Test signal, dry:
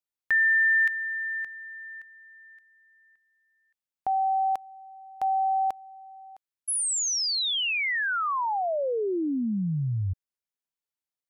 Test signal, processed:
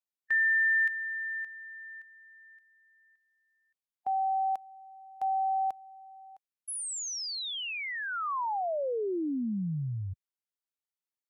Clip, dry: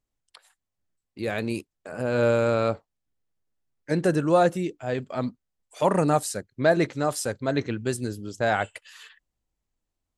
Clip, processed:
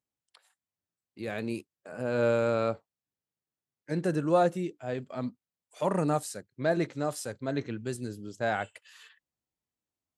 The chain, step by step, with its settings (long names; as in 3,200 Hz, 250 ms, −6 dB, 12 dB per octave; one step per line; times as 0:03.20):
high-pass filter 110 Hz 12 dB per octave
harmonic and percussive parts rebalanced percussive −5 dB
level −4 dB